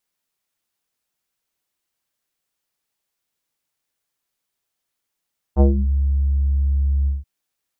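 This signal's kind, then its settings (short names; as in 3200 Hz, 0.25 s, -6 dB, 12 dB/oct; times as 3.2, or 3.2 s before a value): synth note square C#2 24 dB/oct, low-pass 120 Hz, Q 1.5, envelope 3 oct, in 0.33 s, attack 46 ms, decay 0.13 s, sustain -9 dB, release 0.17 s, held 1.51 s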